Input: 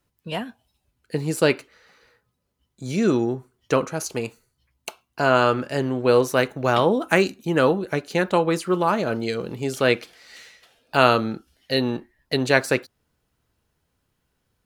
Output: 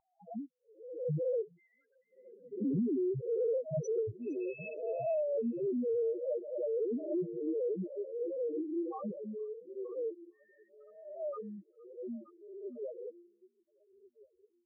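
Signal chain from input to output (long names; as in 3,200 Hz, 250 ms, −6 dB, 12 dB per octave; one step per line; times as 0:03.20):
peak hold with a rise ahead of every peak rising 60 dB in 0.99 s
source passing by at 0:03.47, 22 m/s, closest 13 metres
high-pass filter 100 Hz 12 dB per octave
hum removal 173.7 Hz, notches 2
spectral peaks only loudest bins 1
low-shelf EQ 350 Hz +12 dB
echo through a band-pass that steps 462 ms, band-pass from 2,600 Hz, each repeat −1.4 octaves, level −12 dB
downward compressor 10 to 1, threshold −36 dBFS, peak gain reduction 16.5 dB
noise reduction from a noise print of the clip's start 24 dB
level +6 dB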